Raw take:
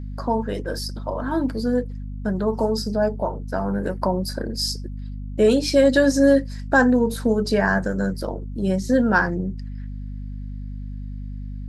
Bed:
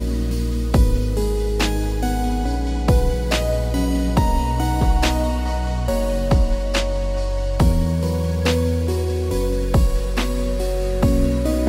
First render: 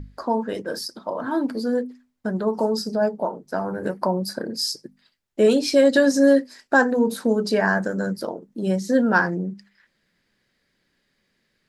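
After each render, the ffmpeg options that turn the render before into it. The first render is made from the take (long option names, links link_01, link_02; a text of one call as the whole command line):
ffmpeg -i in.wav -af "bandreject=frequency=50:width_type=h:width=6,bandreject=frequency=100:width_type=h:width=6,bandreject=frequency=150:width_type=h:width=6,bandreject=frequency=200:width_type=h:width=6,bandreject=frequency=250:width_type=h:width=6" out.wav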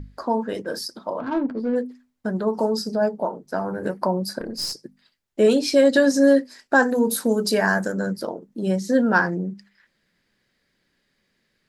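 ffmpeg -i in.wav -filter_complex "[0:a]asplit=3[link_01][link_02][link_03];[link_01]afade=type=out:start_time=1.19:duration=0.02[link_04];[link_02]adynamicsmooth=sensitivity=1.5:basefreq=960,afade=type=in:start_time=1.19:duration=0.02,afade=type=out:start_time=1.75:duration=0.02[link_05];[link_03]afade=type=in:start_time=1.75:duration=0.02[link_06];[link_04][link_05][link_06]amix=inputs=3:normalize=0,asettb=1/sr,asplit=3[link_07][link_08][link_09];[link_07]atrim=end=4.404[link_10];[link_08]atrim=start=4.4:end=4.83,asetpts=PTS-STARTPTS,afade=type=in:duration=0.004:curve=qsin,afade=type=out:start_time=0.426:duration=0.004:curve=qsin,aeval=exprs='(tanh(10*val(0)+0.4)-tanh(0.4))/10':channel_layout=same[link_11];[link_09]atrim=start=4.826[link_12];[link_10][link_11]acrossfade=duration=0.004:curve1=hsin:curve2=qsin[link_13];[link_13][link_12]acrossfade=duration=0.004:curve1=qsin:curve2=hsin,asettb=1/sr,asplit=3[link_14][link_15][link_16];[link_14]atrim=end=6.824[link_17];[link_15]atrim=start=6.82:end=7.92,asetpts=PTS-STARTPTS,afade=type=in:duration=0.004:curve=qsin,afade=type=out:start_time=1.096:duration=0.004:curve=qsin,aemphasis=mode=production:type=50fm[link_18];[link_16]atrim=start=7.916[link_19];[link_17][link_18]acrossfade=duration=0.004:curve1=hsin:curve2=qsin[link_20];[link_20][link_19]acrossfade=duration=0.004:curve1=qsin:curve2=hsin" out.wav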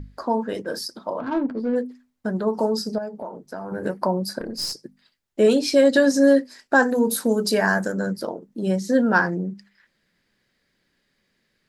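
ffmpeg -i in.wav -filter_complex "[0:a]asettb=1/sr,asplit=3[link_01][link_02][link_03];[link_01]atrim=end=2.984[link_04];[link_02]atrim=start=2.98:end=3.72,asetpts=PTS-STARTPTS,afade=type=in:duration=0.004:curve=qsin,afade=type=out:start_time=0.736:duration=0.004:curve=qsin,acompressor=threshold=-31dB:ratio=3:attack=3.2:release=140:knee=1:detection=peak[link_05];[link_03]atrim=start=3.716[link_06];[link_04][link_05]acrossfade=duration=0.004:curve1=hsin:curve2=qsin[link_07];[link_07][link_06]acrossfade=duration=0.004:curve1=qsin:curve2=hsin" out.wav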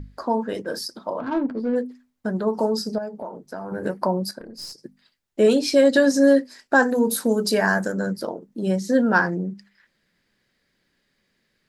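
ffmpeg -i in.wav -filter_complex "[0:a]asplit=3[link_01][link_02][link_03];[link_01]atrim=end=4.312[link_04];[link_02]atrim=start=4.308:end=4.782,asetpts=PTS-STARTPTS,volume=-8.5dB[link_05];[link_03]atrim=start=4.778[link_06];[link_04][link_05]acrossfade=duration=0.004:curve1=hsin:curve2=hsin[link_07];[link_07][link_06]acrossfade=duration=0.004:curve1=hsin:curve2=hsin" out.wav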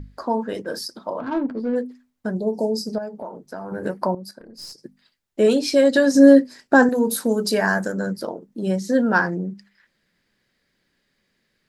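ffmpeg -i in.wav -filter_complex "[0:a]asplit=3[link_01][link_02][link_03];[link_01]afade=type=out:start_time=2.34:duration=0.02[link_04];[link_02]asuperstop=centerf=1800:order=8:qfactor=0.52,afade=type=in:start_time=2.34:duration=0.02,afade=type=out:start_time=2.86:duration=0.02[link_05];[link_03]afade=type=in:start_time=2.86:duration=0.02[link_06];[link_04][link_05][link_06]amix=inputs=3:normalize=0,asettb=1/sr,asplit=3[link_07][link_08][link_09];[link_07]atrim=end=6.154[link_10];[link_08]atrim=start=6.15:end=6.89,asetpts=PTS-STARTPTS,afade=type=in:duration=0.004:curve=qsin,afade=type=out:start_time=0.736:duration=0.004:curve=qsin,equalizer=frequency=150:width=0.37:gain=8.5[link_11];[link_09]atrim=start=6.886[link_12];[link_10][link_11]acrossfade=duration=0.004:curve1=hsin:curve2=qsin[link_13];[link_13][link_12]acrossfade=duration=0.004:curve1=qsin:curve2=hsin,asplit=2[link_14][link_15];[link_14]atrim=end=4.15,asetpts=PTS-STARTPTS,afade=type=out:start_time=4.146:duration=0.004:curve=hsin:silence=0.223872[link_16];[link_15]atrim=start=4.15,asetpts=PTS-STARTPTS,afade=type=in:duration=0.63:silence=0.223872[link_17];[link_16][link_17]concat=n=2:v=0:a=1" out.wav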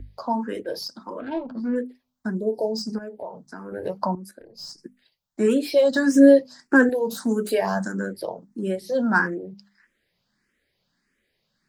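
ffmpeg -i in.wav -filter_complex "[0:a]acrossover=split=250|1900[link_01][link_02][link_03];[link_03]volume=26.5dB,asoftclip=hard,volume=-26.5dB[link_04];[link_01][link_02][link_04]amix=inputs=3:normalize=0,asplit=2[link_05][link_06];[link_06]afreqshift=1.6[link_07];[link_05][link_07]amix=inputs=2:normalize=1" out.wav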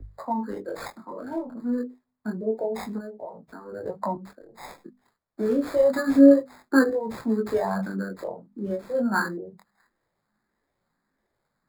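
ffmpeg -i in.wav -filter_complex "[0:a]flanger=delay=18:depth=6.9:speed=0.28,acrossover=split=180|1200|1700[link_01][link_02][link_03][link_04];[link_04]acrusher=samples=15:mix=1:aa=0.000001[link_05];[link_01][link_02][link_03][link_05]amix=inputs=4:normalize=0" out.wav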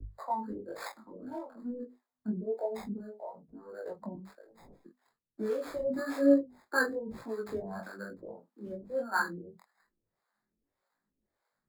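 ffmpeg -i in.wav -filter_complex "[0:a]flanger=delay=18:depth=5.7:speed=1.1,acrossover=split=430[link_01][link_02];[link_01]aeval=exprs='val(0)*(1-1/2+1/2*cos(2*PI*1.7*n/s))':channel_layout=same[link_03];[link_02]aeval=exprs='val(0)*(1-1/2-1/2*cos(2*PI*1.7*n/s))':channel_layout=same[link_04];[link_03][link_04]amix=inputs=2:normalize=0" out.wav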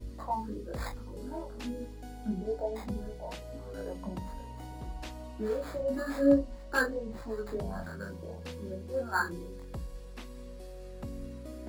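ffmpeg -i in.wav -i bed.wav -filter_complex "[1:a]volume=-24dB[link_01];[0:a][link_01]amix=inputs=2:normalize=0" out.wav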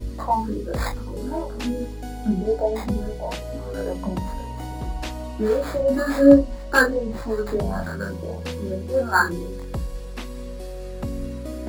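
ffmpeg -i in.wav -af "volume=11.5dB" out.wav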